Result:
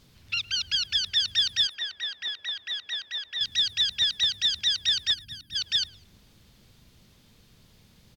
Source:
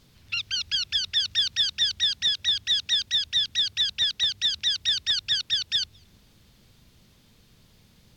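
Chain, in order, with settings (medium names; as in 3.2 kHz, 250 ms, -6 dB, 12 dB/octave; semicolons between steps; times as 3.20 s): 1.67–3.41 s: three-band isolator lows -21 dB, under 350 Hz, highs -16 dB, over 2.7 kHz; 5.14–5.56 s: time-frequency box 330–8600 Hz -16 dB; speakerphone echo 110 ms, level -21 dB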